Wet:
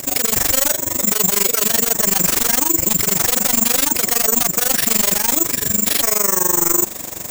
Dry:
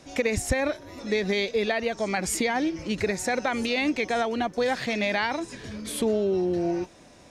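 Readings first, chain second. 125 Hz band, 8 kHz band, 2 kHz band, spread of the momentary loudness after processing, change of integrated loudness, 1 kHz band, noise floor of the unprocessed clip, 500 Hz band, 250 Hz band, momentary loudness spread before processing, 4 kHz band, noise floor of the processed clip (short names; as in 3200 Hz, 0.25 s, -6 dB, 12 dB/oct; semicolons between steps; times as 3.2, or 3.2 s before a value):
+5.0 dB, +22.0 dB, +3.5 dB, 2 LU, +12.5 dB, +4.5 dB, -52 dBFS, -0.5 dB, +2.0 dB, 6 LU, +11.0 dB, -28 dBFS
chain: in parallel at -3 dB: sine folder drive 16 dB, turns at -12.5 dBFS; on the sum: AM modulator 24 Hz, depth 90%; careless resampling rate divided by 6×, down none, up zero stuff; maximiser +2 dB; warbling echo 0.549 s, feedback 75%, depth 96 cents, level -24 dB; gain -1 dB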